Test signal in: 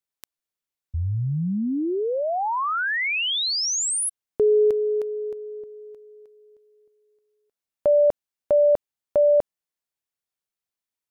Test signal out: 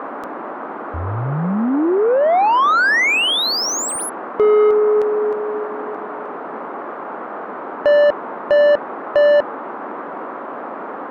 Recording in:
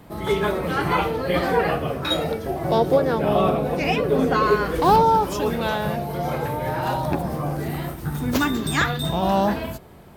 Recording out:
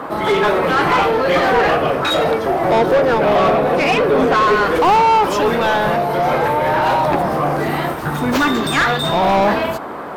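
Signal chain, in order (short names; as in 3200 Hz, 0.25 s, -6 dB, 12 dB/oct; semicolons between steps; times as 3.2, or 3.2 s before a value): overdrive pedal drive 24 dB, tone 2100 Hz, clips at -4.5 dBFS; band noise 230–1300 Hz -28 dBFS; gain -1 dB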